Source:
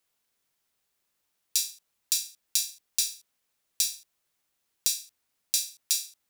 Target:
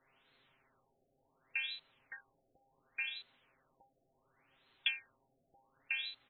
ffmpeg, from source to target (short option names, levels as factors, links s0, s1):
-af "aecho=1:1:7.5:0.83,acompressor=threshold=0.0708:ratio=4,afftfilt=real='re*lt(b*sr/1024,770*pow(4300/770,0.5+0.5*sin(2*PI*0.69*pts/sr)))':imag='im*lt(b*sr/1024,770*pow(4300/770,0.5+0.5*sin(2*PI*0.69*pts/sr)))':win_size=1024:overlap=0.75,volume=3.76"